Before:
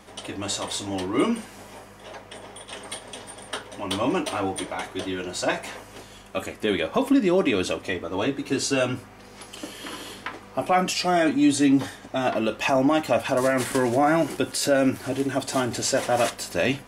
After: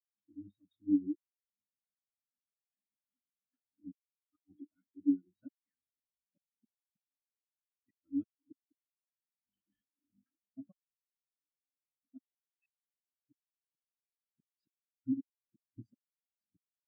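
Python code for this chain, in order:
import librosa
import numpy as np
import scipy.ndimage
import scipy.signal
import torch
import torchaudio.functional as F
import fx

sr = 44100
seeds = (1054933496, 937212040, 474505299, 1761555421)

y = fx.lowpass(x, sr, hz=1900.0, slope=6)
y = fx.band_shelf(y, sr, hz=640.0, db=-11.5, octaves=1.7)
y = fx.gate_flip(y, sr, shuts_db=-21.0, range_db=-37)
y = fx.over_compress(y, sr, threshold_db=-45.0, ratio=-0.5, at=(9.44, 10.24), fade=0.02)
y = fx.rotary_switch(y, sr, hz=8.0, then_hz=0.75, switch_at_s=2.19)
y = fx.spectral_expand(y, sr, expansion=4.0)
y = y * 10.0 ** (1.5 / 20.0)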